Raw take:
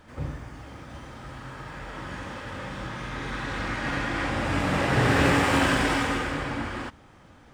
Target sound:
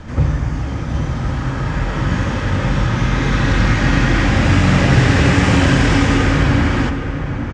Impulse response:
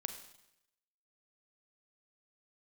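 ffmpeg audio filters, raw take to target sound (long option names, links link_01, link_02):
-filter_complex "[0:a]lowpass=frequency=6400:width_type=q:width=2.7,bass=frequency=250:gain=8,treble=frequency=4000:gain=-9,acrossover=split=660|1500|3100[link_01][link_02][link_03][link_04];[link_01]acompressor=threshold=-27dB:ratio=4[link_05];[link_02]acompressor=threshold=-43dB:ratio=4[link_06];[link_03]acompressor=threshold=-37dB:ratio=4[link_07];[link_04]acompressor=threshold=-43dB:ratio=4[link_08];[link_05][link_06][link_07][link_08]amix=inputs=4:normalize=0,asplit=2[link_09][link_10];[link_10]adelay=816.3,volume=-7dB,highshelf=frequency=4000:gain=-18.4[link_11];[link_09][link_11]amix=inputs=2:normalize=0,asplit=2[link_12][link_13];[1:a]atrim=start_sample=2205,lowshelf=frequency=430:gain=5.5,highshelf=frequency=6900:gain=10.5[link_14];[link_13][link_14]afir=irnorm=-1:irlink=0,volume=-1dB[link_15];[link_12][link_15]amix=inputs=2:normalize=0,volume=8dB"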